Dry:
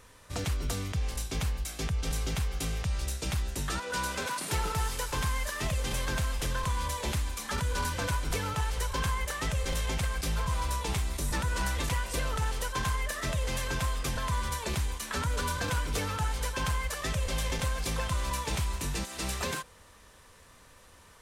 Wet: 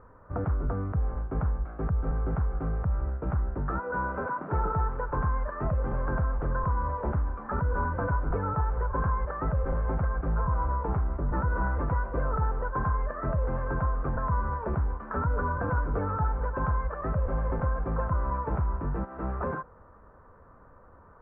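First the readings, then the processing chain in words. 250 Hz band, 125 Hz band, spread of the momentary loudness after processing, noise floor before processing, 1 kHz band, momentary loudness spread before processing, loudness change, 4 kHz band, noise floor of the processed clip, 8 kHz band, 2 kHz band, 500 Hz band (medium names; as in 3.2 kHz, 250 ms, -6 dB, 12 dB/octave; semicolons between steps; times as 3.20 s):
+4.0 dB, +3.5 dB, 3 LU, -56 dBFS, +3.5 dB, 3 LU, +2.0 dB, under -35 dB, -54 dBFS, under -40 dB, -3.5 dB, +4.5 dB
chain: elliptic low-pass 1.4 kHz, stop band 80 dB; trim +4.5 dB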